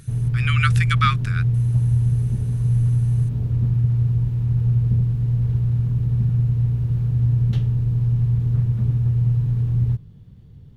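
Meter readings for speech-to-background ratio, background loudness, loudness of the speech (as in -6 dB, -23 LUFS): -4.5 dB, -20.5 LUFS, -25.0 LUFS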